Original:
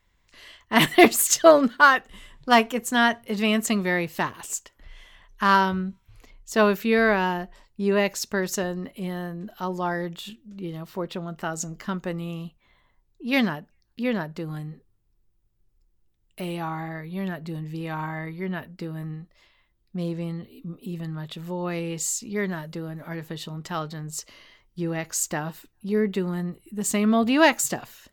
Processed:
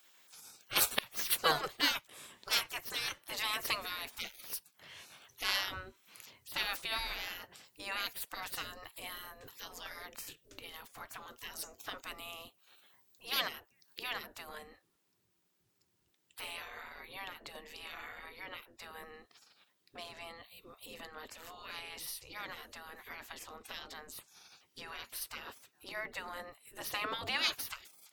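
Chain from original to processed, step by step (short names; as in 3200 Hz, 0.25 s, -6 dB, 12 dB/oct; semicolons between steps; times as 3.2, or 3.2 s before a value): high shelf 9800 Hz +9.5 dB, from 14.49 s -4.5 dB; spectral gate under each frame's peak -20 dB weak; flipped gate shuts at -9 dBFS, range -26 dB; mismatched tape noise reduction encoder only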